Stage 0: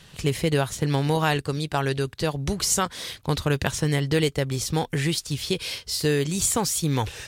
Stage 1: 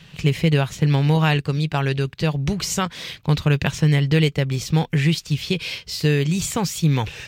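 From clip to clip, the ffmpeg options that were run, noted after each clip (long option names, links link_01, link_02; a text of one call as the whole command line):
ffmpeg -i in.wav -af "equalizer=frequency=160:width_type=o:width=0.67:gain=9,equalizer=frequency=2500:width_type=o:width=0.67:gain=7,equalizer=frequency=10000:width_type=o:width=0.67:gain=-10" out.wav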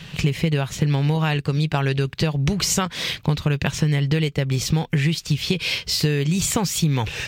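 ffmpeg -i in.wav -af "acompressor=threshold=-25dB:ratio=6,volume=7.5dB" out.wav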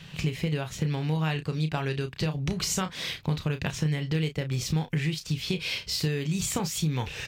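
ffmpeg -i in.wav -filter_complex "[0:a]asplit=2[link_01][link_02];[link_02]adelay=32,volume=-9dB[link_03];[link_01][link_03]amix=inputs=2:normalize=0,volume=-8dB" out.wav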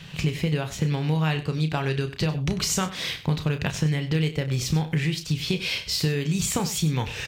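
ffmpeg -i in.wav -af "aecho=1:1:96:0.178,volume=3.5dB" out.wav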